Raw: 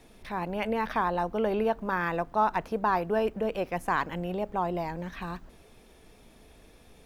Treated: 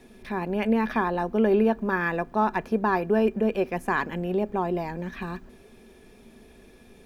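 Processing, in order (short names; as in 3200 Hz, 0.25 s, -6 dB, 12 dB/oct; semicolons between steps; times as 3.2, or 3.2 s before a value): small resonant body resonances 230/380/1700/2400 Hz, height 11 dB, ringing for 60 ms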